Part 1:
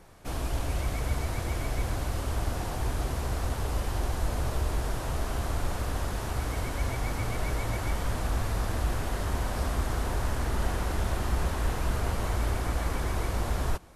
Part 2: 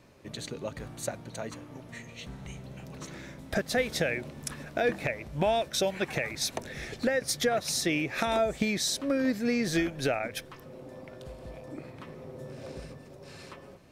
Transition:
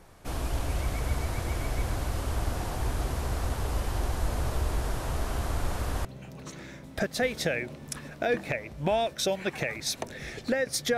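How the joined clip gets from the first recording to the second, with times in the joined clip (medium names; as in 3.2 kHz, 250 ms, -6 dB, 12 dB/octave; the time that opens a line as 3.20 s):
part 1
6.05 s: go over to part 2 from 2.60 s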